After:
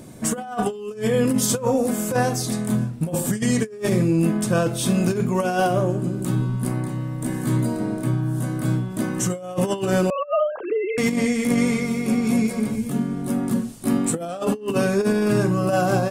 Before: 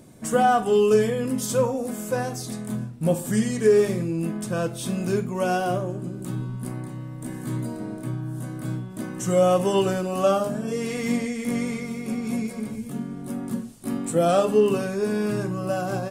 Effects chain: 10.1–10.98 sine-wave speech; negative-ratio compressor -25 dBFS, ratio -0.5; gain +5 dB

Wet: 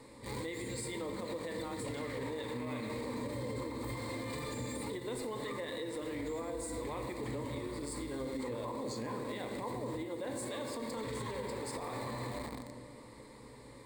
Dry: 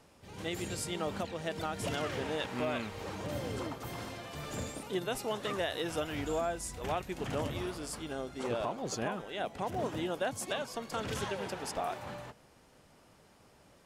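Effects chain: bell 330 Hz +13 dB 0.42 oct; reverb RT60 1.9 s, pre-delay 6 ms, DRR 3.5 dB; in parallel at -3 dB: bit-crush 7-bit; on the sum: compressor 10:1, threshold -36 dBFS, peak gain reduction 21.5 dB; ripple EQ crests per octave 0.98, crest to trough 14 dB; limiter -33.5 dBFS, peak gain reduction 8.5 dB; gain +2.5 dB

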